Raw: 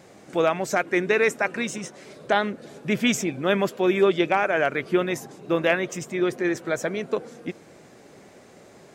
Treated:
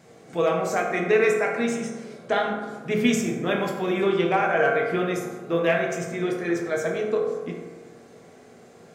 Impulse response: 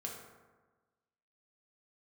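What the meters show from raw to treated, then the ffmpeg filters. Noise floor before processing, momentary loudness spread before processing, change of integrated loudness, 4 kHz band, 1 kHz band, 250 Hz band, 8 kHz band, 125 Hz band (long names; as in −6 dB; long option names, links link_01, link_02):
−50 dBFS, 13 LU, −0.5 dB, −3.0 dB, +0.5 dB, −0.5 dB, −2.5 dB, +1.0 dB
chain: -filter_complex "[1:a]atrim=start_sample=2205[link_01];[0:a][link_01]afir=irnorm=-1:irlink=0"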